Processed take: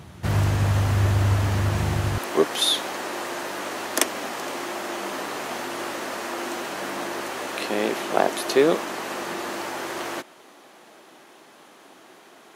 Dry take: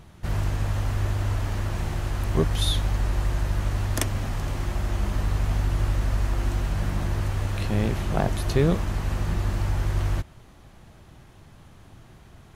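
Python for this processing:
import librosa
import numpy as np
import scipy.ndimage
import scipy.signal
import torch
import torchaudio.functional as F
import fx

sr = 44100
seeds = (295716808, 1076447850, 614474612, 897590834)

y = fx.highpass(x, sr, hz=fx.steps((0.0, 75.0), (2.18, 300.0)), slope=24)
y = F.gain(torch.from_numpy(y), 7.0).numpy()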